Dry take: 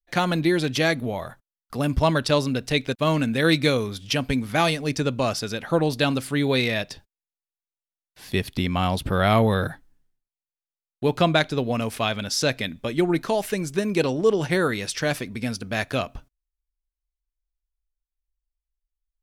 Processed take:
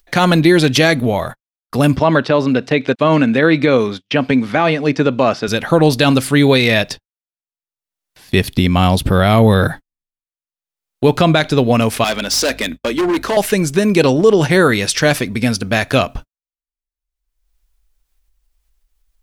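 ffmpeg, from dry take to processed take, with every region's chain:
-filter_complex "[0:a]asettb=1/sr,asplit=3[s0][s1][s2];[s0]atrim=end=1.964[s3];[s1]atrim=start=1.96:end=5.48,asetpts=PTS-STARTPTS,afade=t=in:d=0.004:c=qsin,afade=t=out:st=3.516:d=0.004:c=qsin,acrossover=split=2500[s4][s5];[s5]acompressor=threshold=0.00891:ratio=4:attack=1:release=60[s6];[s4][s6]amix=inputs=2:normalize=0,highpass=180,lowpass=5300[s7];[s2]atrim=start=5.476[s8];[s3][s7]acrossfade=d=0.004:c1=hsin:c2=qsin[s9];[s9][s8]acrossfade=d=0.004:c1=qsin:c2=hsin,asettb=1/sr,asplit=3[s10][s11][s12];[s10]atrim=end=8.444[s13];[s11]atrim=start=8.44:end=9.6,asetpts=PTS-STARTPTS,afade=t=in:d=0.004:c=qsin,afade=t=out:st=1.156:d=0.004:c=qsin,equalizer=f=1400:t=o:w=2.8:g=-4,acompressor=mode=upward:threshold=0.0141:ratio=2.5:attack=3.2:release=140:knee=2.83:detection=peak[s14];[s12]atrim=start=9.596[s15];[s13][s14]acrossfade=d=0.004:c1=hsin:c2=qsin[s16];[s16][s15]acrossfade=d=0.004:c1=qsin:c2=hsin,asettb=1/sr,asplit=3[s17][s18][s19];[s17]atrim=end=12.044[s20];[s18]atrim=start=12.04:end=13.37,asetpts=PTS-STARTPTS,afade=t=in:d=0.004:c=qsin,afade=t=out:st=1.326:d=0.004:c=qsin,highpass=f=230:w=0.5412,highpass=f=230:w=1.3066,aeval=exprs='val(0)+0.00355*(sin(2*PI*50*n/s)+sin(2*PI*2*50*n/s)/2+sin(2*PI*3*50*n/s)/3+sin(2*PI*4*50*n/s)/4+sin(2*PI*5*50*n/s)/5)':c=same,asoftclip=type=hard:threshold=0.0562[s21];[s19]atrim=start=13.366[s22];[s20][s21]acrossfade=d=0.004:c1=hsin:c2=qsin[s23];[s23][s22]acrossfade=d=0.004:c1=qsin:c2=hsin,agate=range=0.00562:threshold=0.0141:ratio=16:detection=peak,acompressor=mode=upward:threshold=0.0251:ratio=2.5,alimiter=level_in=4.47:limit=0.891:release=50:level=0:latency=1,volume=0.891"

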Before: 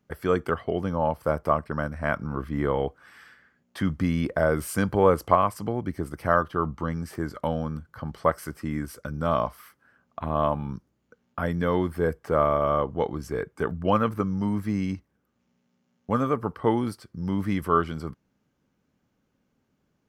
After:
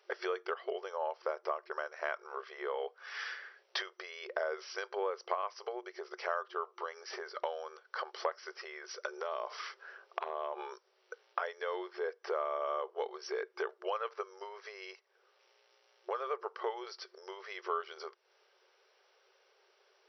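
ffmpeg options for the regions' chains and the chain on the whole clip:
-filter_complex "[0:a]asettb=1/sr,asplit=3[s0][s1][s2];[s0]atrim=end=9.074[s3];[s1]atrim=start=9.07:end=10.73,asetpts=PTS-STARTPTS,afade=t=in:d=0.004:c=qsin,afade=t=out:st=1.656:d=0.004:c=qsin,lowshelf=f=270:t=q:w=3:g=-8,acompressor=threshold=0.0224:ratio=12:attack=3.2:release=140:knee=1:detection=peak[s4];[s2]atrim=start=10.726[s5];[s3][s4]acrossfade=d=0.004:c1=hsin:c2=qsin[s6];[s6][s5]acrossfade=d=0.004:c1=qsin:c2=hsin,highshelf=f=2700:g=9,acompressor=threshold=0.00891:ratio=6,afftfilt=real='re*between(b*sr/4096,360,5900)':imag='im*between(b*sr/4096,360,5900)':win_size=4096:overlap=0.75,volume=2.51"

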